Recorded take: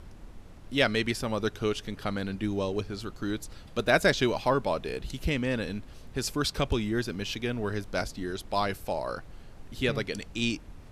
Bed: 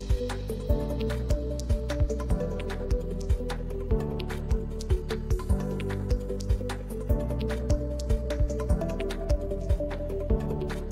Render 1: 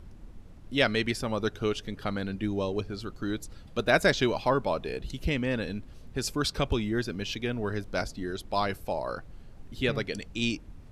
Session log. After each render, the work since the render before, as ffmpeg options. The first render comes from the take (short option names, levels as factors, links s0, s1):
-af "afftdn=nr=6:nf=-48"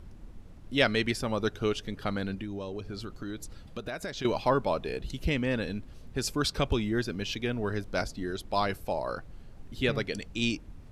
-filter_complex "[0:a]asettb=1/sr,asplit=3[s0][s1][s2];[s0]atrim=end=2.344[s3];[s1]atrim=start=2.34:end=4.25,asetpts=PTS-STARTPTS,afade=t=in:d=0.004:c=qsin,afade=t=out:st=1.906:d=0.004:c=qsin,acompressor=threshold=0.0224:ratio=6:attack=3.2:release=140:knee=1:detection=peak[s4];[s2]atrim=start=4.246[s5];[s3][s4]acrossfade=d=0.004:c1=hsin:c2=qsin[s6];[s6][s5]acrossfade=d=0.004:c1=qsin:c2=hsin"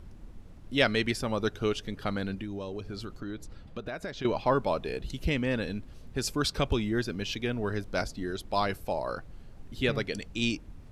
-filter_complex "[0:a]asettb=1/sr,asplit=3[s0][s1][s2];[s0]atrim=end=3.204[s3];[s1]atrim=start=3.2:end=4.5,asetpts=PTS-STARTPTS,afade=t=in:d=0.004:c=qsin,afade=t=out:st=1.296:d=0.004:c=qsin,highshelf=f=5300:g=-11.5[s4];[s2]atrim=start=4.496[s5];[s3][s4]acrossfade=d=0.004:c1=hsin:c2=qsin[s6];[s6][s5]acrossfade=d=0.004:c1=qsin:c2=hsin"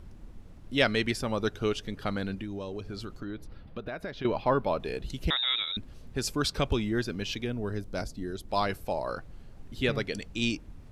-filter_complex "[0:a]asettb=1/sr,asplit=3[s0][s1][s2];[s0]atrim=end=3.254[s3];[s1]atrim=start=3.25:end=4.8,asetpts=PTS-STARTPTS,afade=t=in:d=0.004:c=qsin,afade=t=out:st=1.546:d=0.004:c=qsin,equalizer=f=7300:w=1.5:g=-14[s4];[s2]atrim=start=4.796[s5];[s3][s4]acrossfade=d=0.004:c1=hsin:c2=qsin[s6];[s6][s5]acrossfade=d=0.004:c1=qsin:c2=hsin,asettb=1/sr,asplit=3[s7][s8][s9];[s7]atrim=end=5.304[s10];[s8]atrim=start=5.3:end=5.77,asetpts=PTS-STARTPTS,afade=t=in:d=0.004:c=qsin,afade=t=out:st=0.466:d=0.004:c=qsin,lowpass=f=3300:t=q:w=0.5098,lowpass=f=3300:t=q:w=0.6013,lowpass=f=3300:t=q:w=0.9,lowpass=f=3300:t=q:w=2.563,afreqshift=-3900[s11];[s9]atrim=start=5.766[s12];[s10][s11]acrossfade=d=0.004:c1=hsin:c2=qsin[s13];[s13][s12]acrossfade=d=0.004:c1=qsin:c2=hsin,asettb=1/sr,asplit=3[s14][s15][s16];[s14]atrim=end=7.444[s17];[s15]atrim=start=7.44:end=8.49,asetpts=PTS-STARTPTS,afade=t=in:d=0.004:c=qsin,afade=t=out:st=1.046:d=0.004:c=qsin,equalizer=f=1900:w=0.33:g=-7[s18];[s16]atrim=start=8.486[s19];[s17][s18]acrossfade=d=0.004:c1=hsin:c2=qsin[s20];[s20][s19]acrossfade=d=0.004:c1=qsin:c2=hsin"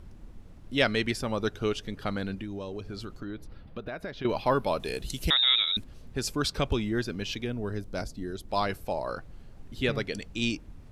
-filter_complex "[0:a]asettb=1/sr,asplit=3[s0][s1][s2];[s0]atrim=end=4.294[s3];[s1]atrim=start=4.29:end=5.84,asetpts=PTS-STARTPTS,afade=t=in:d=0.004:c=qsin,afade=t=out:st=1.546:d=0.004:c=qsin,equalizer=f=11000:t=o:w=2.1:g=14.5[s4];[s2]atrim=start=5.836[s5];[s3][s4]acrossfade=d=0.004:c1=hsin:c2=qsin[s6];[s6][s5]acrossfade=d=0.004:c1=qsin:c2=hsin"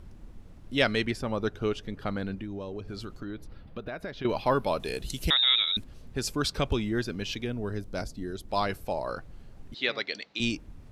-filter_complex "[0:a]asettb=1/sr,asplit=3[s0][s1][s2];[s0]atrim=end=1.054[s3];[s1]atrim=start=1.05:end=2.88,asetpts=PTS-STARTPTS,afade=t=in:d=0.004:c=qsin,afade=t=out:st=1.826:d=0.004:c=qsin,highshelf=f=3000:g=-7.5[s4];[s2]atrim=start=2.876[s5];[s3][s4]acrossfade=d=0.004:c1=hsin:c2=qsin[s6];[s6][s5]acrossfade=d=0.004:c1=qsin:c2=hsin,asettb=1/sr,asplit=3[s7][s8][s9];[s7]atrim=end=9.744[s10];[s8]atrim=start=9.74:end=10.4,asetpts=PTS-STARTPTS,afade=t=in:d=0.004:c=qsin,afade=t=out:st=0.656:d=0.004:c=qsin,highpass=420,equalizer=f=440:t=q:w=4:g=-4,equalizer=f=2100:t=q:w=4:g=5,equalizer=f=4000:t=q:w=4:g=9,lowpass=f=5600:w=0.5412,lowpass=f=5600:w=1.3066[s11];[s9]atrim=start=10.396[s12];[s10][s11]acrossfade=d=0.004:c1=hsin:c2=qsin[s13];[s13][s12]acrossfade=d=0.004:c1=qsin:c2=hsin"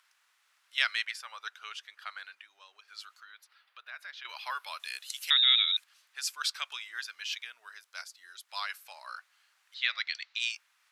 -af "highpass=f=1300:w=0.5412,highpass=f=1300:w=1.3066"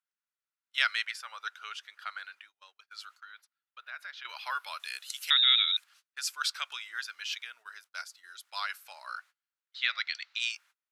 -af "agate=range=0.0316:threshold=0.00158:ratio=16:detection=peak,equalizer=f=1400:t=o:w=0.23:g=5.5"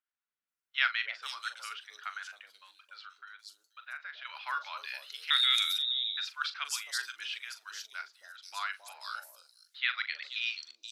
-filter_complex "[0:a]asplit=2[s0][s1];[s1]adelay=41,volume=0.282[s2];[s0][s2]amix=inputs=2:normalize=0,acrossover=split=620|4200[s3][s4][s5];[s3]adelay=270[s6];[s5]adelay=480[s7];[s6][s4][s7]amix=inputs=3:normalize=0"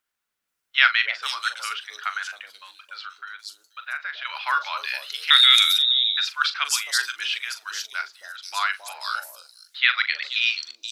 -af "volume=3.98,alimiter=limit=0.891:level=0:latency=1"